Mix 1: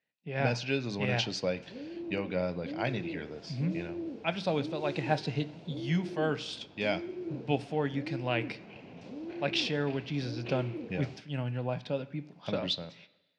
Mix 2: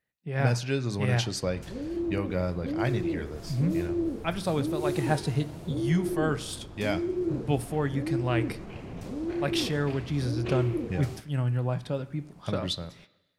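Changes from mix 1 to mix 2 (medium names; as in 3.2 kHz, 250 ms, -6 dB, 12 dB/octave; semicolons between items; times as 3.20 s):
background +5.0 dB; master: remove cabinet simulation 190–5400 Hz, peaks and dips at 360 Hz -5 dB, 1.2 kHz -8 dB, 1.8 kHz -3 dB, 2.6 kHz +5 dB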